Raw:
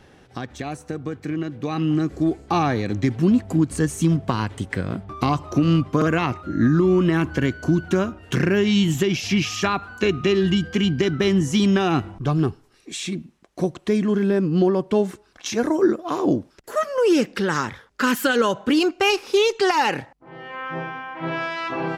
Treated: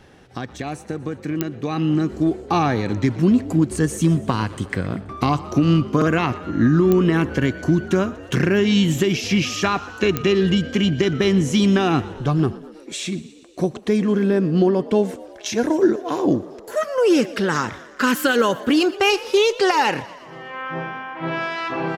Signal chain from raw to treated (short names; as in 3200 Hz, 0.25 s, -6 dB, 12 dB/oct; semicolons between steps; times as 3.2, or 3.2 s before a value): 14.7–16.82 notch 1200 Hz, Q 5.6; frequency-shifting echo 0.12 s, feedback 64%, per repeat +49 Hz, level -19 dB; pops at 1.41/6.92/10.17, -8 dBFS; gain +1.5 dB